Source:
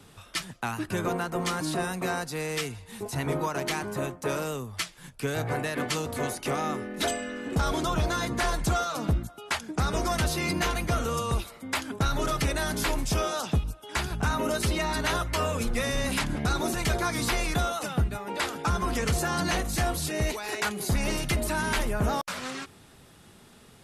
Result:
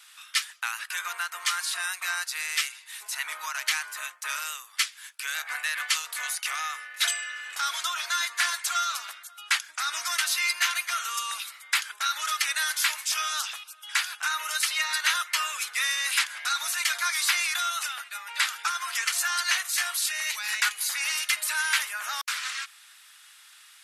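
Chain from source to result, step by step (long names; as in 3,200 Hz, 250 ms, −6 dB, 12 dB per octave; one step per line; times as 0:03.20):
high-pass filter 1,400 Hz 24 dB per octave
level +6.5 dB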